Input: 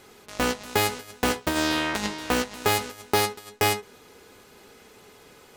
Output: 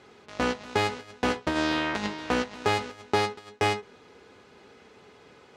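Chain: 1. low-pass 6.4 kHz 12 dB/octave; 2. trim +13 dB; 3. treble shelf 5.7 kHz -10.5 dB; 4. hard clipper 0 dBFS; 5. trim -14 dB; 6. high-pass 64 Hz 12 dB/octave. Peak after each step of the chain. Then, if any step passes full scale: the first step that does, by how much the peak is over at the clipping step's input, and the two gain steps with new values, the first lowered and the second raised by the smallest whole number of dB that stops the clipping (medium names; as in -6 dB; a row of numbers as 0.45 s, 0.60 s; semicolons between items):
-8.5 dBFS, +4.5 dBFS, +3.5 dBFS, 0.0 dBFS, -14.0 dBFS, -11.5 dBFS; step 2, 3.5 dB; step 2 +9 dB, step 5 -10 dB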